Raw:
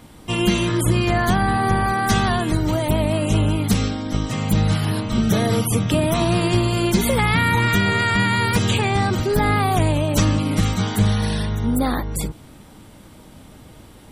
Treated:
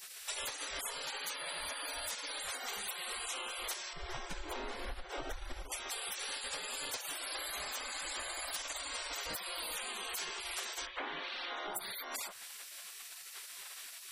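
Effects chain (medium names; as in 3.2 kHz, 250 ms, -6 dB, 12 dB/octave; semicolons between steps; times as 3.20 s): 10.85–11.73 s: low-pass 2.3 kHz -> 4.8 kHz 24 dB/octave; spectral gate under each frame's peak -25 dB weak; 3.93–5.72 s: tilt EQ -4.5 dB/octave; compression 16:1, threshold -46 dBFS, peak gain reduction 22.5 dB; trim +8.5 dB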